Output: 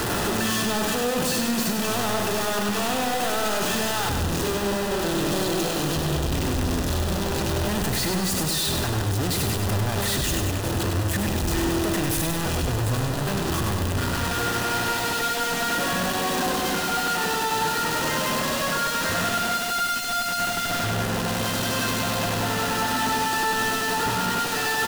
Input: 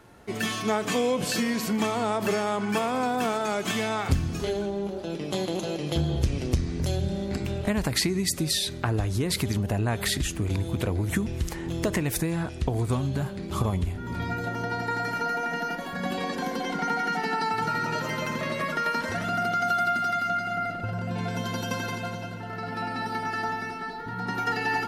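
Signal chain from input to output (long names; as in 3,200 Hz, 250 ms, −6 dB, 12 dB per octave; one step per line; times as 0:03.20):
sign of each sample alone
notch filter 2,200 Hz, Q 8.2
repeating echo 99 ms, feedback 55%, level −5 dB
level +2 dB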